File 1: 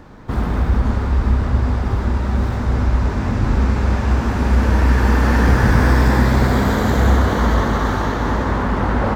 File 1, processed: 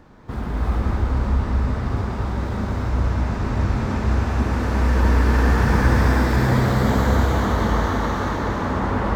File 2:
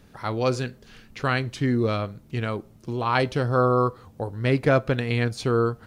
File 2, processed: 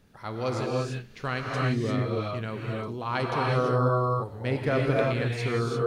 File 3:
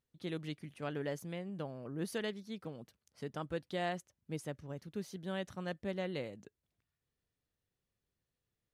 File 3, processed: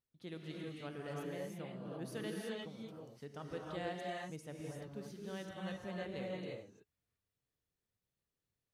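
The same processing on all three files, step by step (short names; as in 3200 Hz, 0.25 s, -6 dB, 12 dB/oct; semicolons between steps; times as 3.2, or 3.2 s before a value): non-linear reverb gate 0.37 s rising, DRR -2.5 dB; gain -7.5 dB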